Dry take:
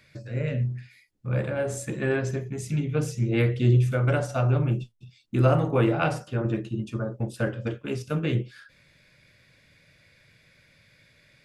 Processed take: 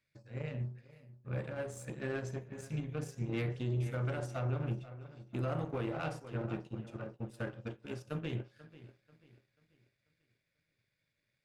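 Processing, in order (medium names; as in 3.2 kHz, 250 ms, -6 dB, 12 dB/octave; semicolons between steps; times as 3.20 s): feedback echo behind a low-pass 488 ms, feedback 48%, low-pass 3.8 kHz, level -13 dB; power-law waveshaper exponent 1.4; peak limiter -19.5 dBFS, peak gain reduction 10 dB; trim -6.5 dB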